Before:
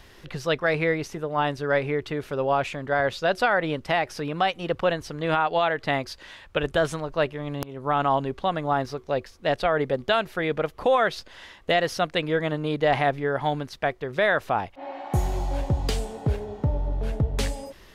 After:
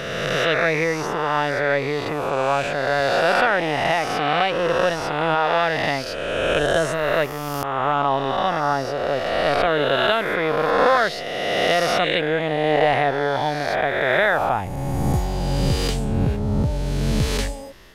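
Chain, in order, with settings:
peak hold with a rise ahead of every peak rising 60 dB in 2.25 s

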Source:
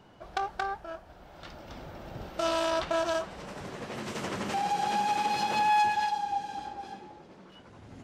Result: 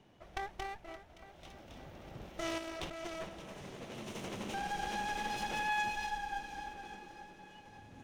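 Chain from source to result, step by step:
lower of the sound and its delayed copy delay 0.32 ms
0:02.58–0:03.29: compressor whose output falls as the input rises −36 dBFS, ratio −1
delay that swaps between a low-pass and a high-pass 285 ms, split 1,800 Hz, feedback 76%, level −12.5 dB
level −7 dB

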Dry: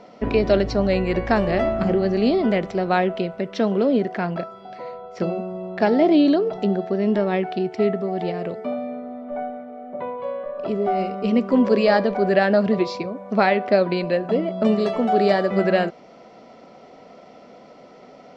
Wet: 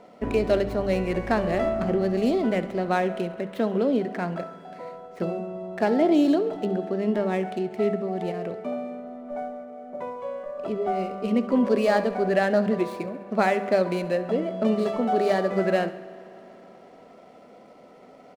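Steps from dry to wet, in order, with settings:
running median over 9 samples
mains-hum notches 50/100/150/200 Hz
on a send: repeating echo 68 ms, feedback 60%, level −17.5 dB
on the sum: spring reverb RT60 3.3 s, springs 53 ms, chirp 50 ms, DRR 17.5 dB
level −4 dB

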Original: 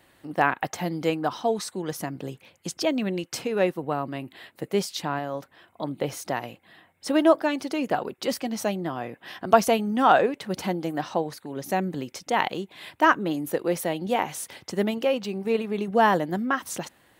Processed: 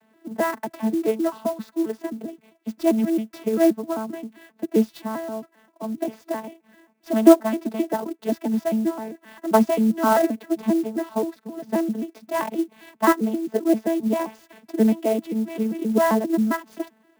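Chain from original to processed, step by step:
vocoder with an arpeggio as carrier bare fifth, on A3, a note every 132 ms
high-shelf EQ 4,400 Hz −7.5 dB
converter with an unsteady clock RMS 0.027 ms
level +4 dB

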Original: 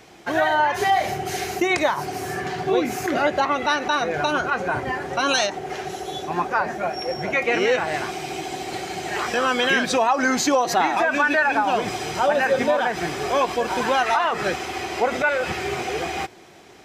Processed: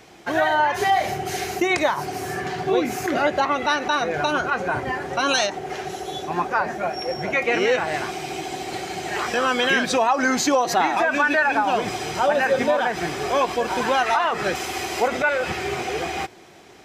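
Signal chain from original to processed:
0:14.55–0:15.08: high-shelf EQ 6,200 Hz +11.5 dB

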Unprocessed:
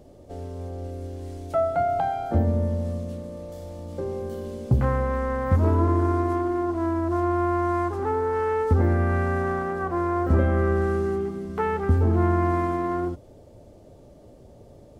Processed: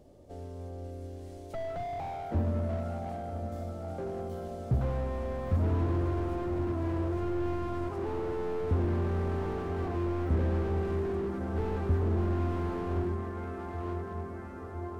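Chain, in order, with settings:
feedback delay with all-pass diffusion 1,064 ms, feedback 65%, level −8.5 dB
slew-rate limiting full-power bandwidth 27 Hz
level −7 dB

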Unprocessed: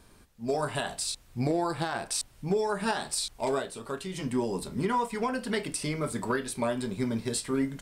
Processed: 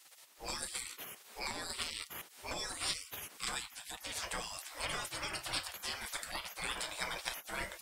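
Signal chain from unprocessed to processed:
camcorder AGC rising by 11 dB per second
gate on every frequency bin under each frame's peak −25 dB weak
level +7.5 dB

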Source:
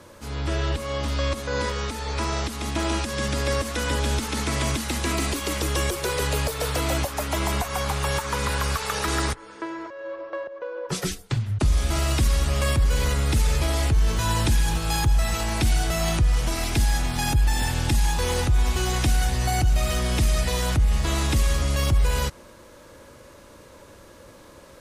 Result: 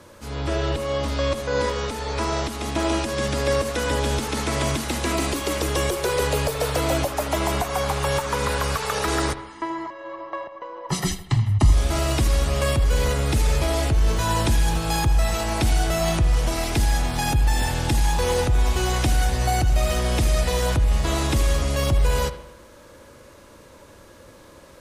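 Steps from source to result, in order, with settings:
dynamic equaliser 580 Hz, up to +5 dB, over −42 dBFS, Q 0.89
0:09.35–0:11.73: comb filter 1 ms, depth 79%
bucket-brigade delay 79 ms, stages 2,048, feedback 49%, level −13.5 dB

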